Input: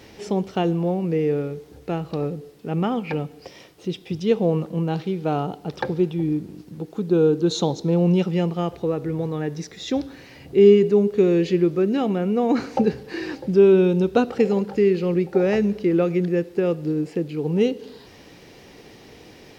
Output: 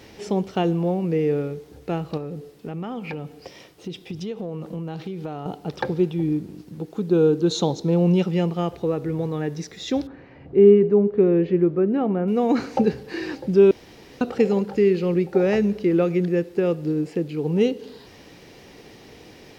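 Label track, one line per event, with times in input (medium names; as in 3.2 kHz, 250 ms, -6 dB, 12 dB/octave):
2.170000	5.460000	compression, threshold -27 dBFS
10.070000	12.280000	low-pass 1.5 kHz
13.710000	14.210000	room tone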